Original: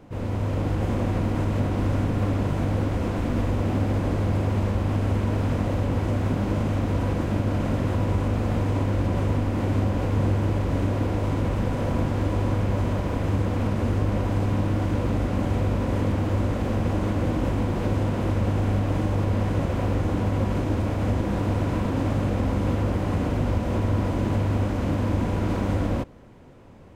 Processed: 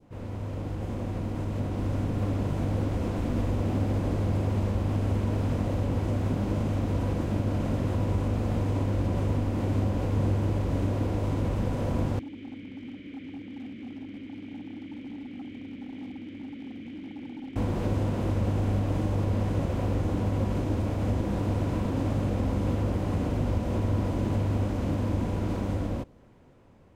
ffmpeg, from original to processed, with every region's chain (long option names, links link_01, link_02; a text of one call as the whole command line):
ffmpeg -i in.wav -filter_complex "[0:a]asettb=1/sr,asplit=3[link_01][link_02][link_03];[link_01]atrim=end=12.194[link_04];[link_02]atrim=start=12.19:end=17.56,asetpts=PTS-STARTPTS,afade=type=in:duration=0.004:curve=qsin,afade=type=out:start_time=5.366:duration=0.004:curve=qsin,asplit=3[link_05][link_06][link_07];[link_05]bandpass=frequency=270:width_type=q:width=8,volume=0dB[link_08];[link_06]bandpass=frequency=2290:width_type=q:width=8,volume=-6dB[link_09];[link_07]bandpass=frequency=3010:width_type=q:width=8,volume=-9dB[link_10];[link_08][link_09][link_10]amix=inputs=3:normalize=0,equalizer=frequency=2800:width_type=o:width=1.5:gain=5.5,volume=32dB,asoftclip=hard,volume=-32dB[link_11];[link_03]atrim=start=17.556[link_12];[link_04][link_11]acrossfade=duration=0.004:curve1=hsin:curve2=qsin[link_13];[link_13][link_12]acrossfade=duration=0.004:curve1=qsin:curve2=hsin,adynamicequalizer=threshold=0.00447:dfrequency=1600:dqfactor=0.78:tfrequency=1600:tqfactor=0.78:attack=5:release=100:ratio=0.375:range=2:mode=cutabove:tftype=bell,dynaudnorm=framelen=730:gausssize=5:maxgain=5.5dB,volume=-8.5dB" out.wav